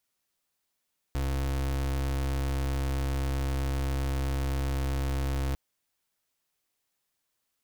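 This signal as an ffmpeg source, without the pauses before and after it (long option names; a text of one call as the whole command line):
ffmpeg -f lavfi -i "aevalsrc='0.0355*(2*lt(mod(67.7*t,1),0.34)-1)':duration=4.4:sample_rate=44100" out.wav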